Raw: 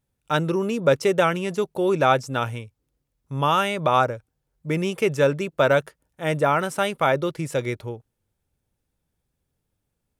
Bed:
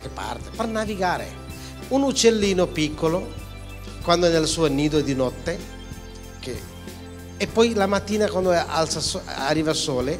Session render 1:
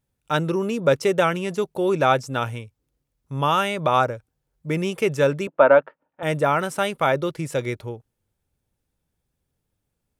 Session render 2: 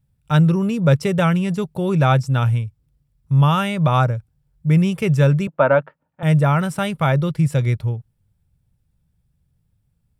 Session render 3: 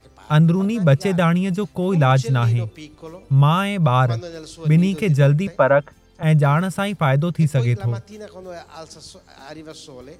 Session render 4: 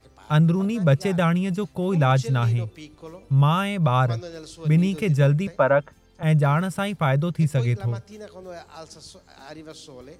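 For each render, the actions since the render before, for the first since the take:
0:05.47–0:06.23: loudspeaker in its box 260–2,500 Hz, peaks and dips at 270 Hz +5 dB, 410 Hz −3 dB, 580 Hz +6 dB, 900 Hz +7 dB, 1,300 Hz +4 dB, 2,000 Hz −3 dB
low shelf with overshoot 220 Hz +12 dB, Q 1.5; notch filter 6,400 Hz, Q 10
mix in bed −15.5 dB
level −3.5 dB

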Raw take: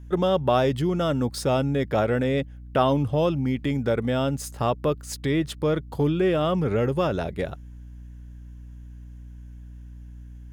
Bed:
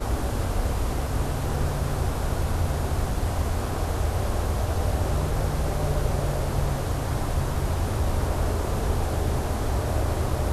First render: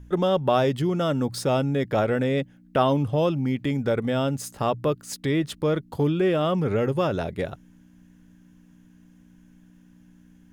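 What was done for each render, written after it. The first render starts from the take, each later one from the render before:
hum removal 60 Hz, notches 2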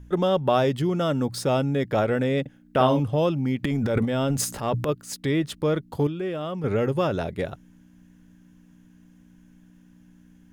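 0:02.41–0:03.00: double-tracking delay 47 ms −7 dB
0:03.63–0:04.89: transient designer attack −7 dB, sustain +11 dB
0:06.07–0:06.64: clip gain −7.5 dB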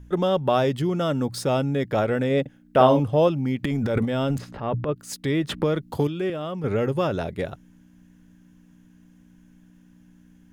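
0:02.29–0:03.28: dynamic equaliser 600 Hz, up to +5 dB, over −29 dBFS, Q 0.74
0:04.38–0:04.96: high-frequency loss of the air 360 metres
0:05.49–0:06.30: multiband upward and downward compressor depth 70%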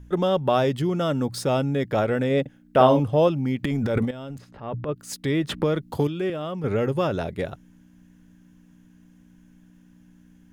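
0:04.11–0:05.05: fade in quadratic, from −13 dB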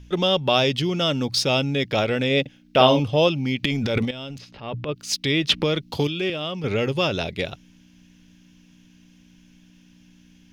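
flat-topped bell 3,700 Hz +13.5 dB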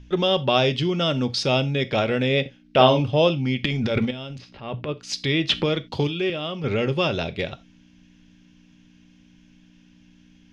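high-frequency loss of the air 88 metres
reverb whose tail is shaped and stops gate 110 ms falling, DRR 11.5 dB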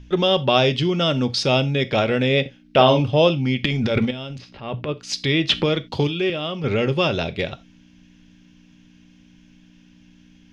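level +2.5 dB
brickwall limiter −2 dBFS, peak gain reduction 3 dB

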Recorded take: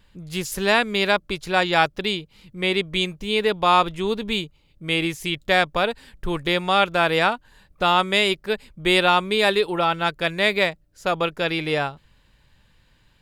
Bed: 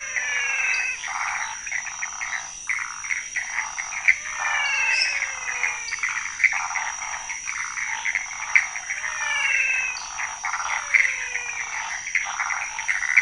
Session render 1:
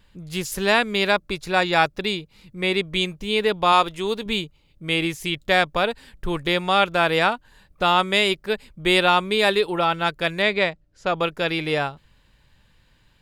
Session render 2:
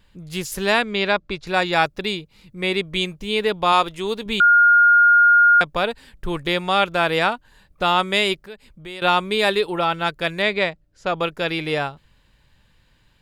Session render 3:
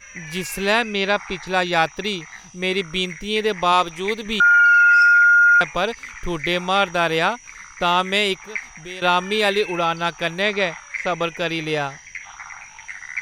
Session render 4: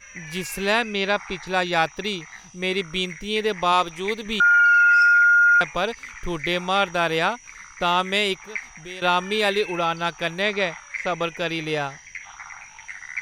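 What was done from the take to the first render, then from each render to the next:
0:01.10–0:02.85: notch filter 3,100 Hz; 0:03.72–0:04.26: bass and treble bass −6 dB, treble +4 dB; 0:10.42–0:11.17: high-frequency loss of the air 79 metres
0:00.82–0:01.47: low-pass filter 4,800 Hz; 0:04.40–0:05.61: beep over 1,420 Hz −9.5 dBFS; 0:08.39–0:09.02: downward compressor 2 to 1, threshold −45 dBFS
mix in bed −11 dB
level −2.5 dB

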